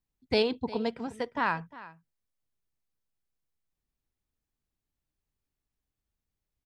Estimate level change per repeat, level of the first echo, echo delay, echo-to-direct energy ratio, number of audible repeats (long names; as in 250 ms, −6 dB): repeats not evenly spaced, −18.0 dB, 354 ms, −18.0 dB, 1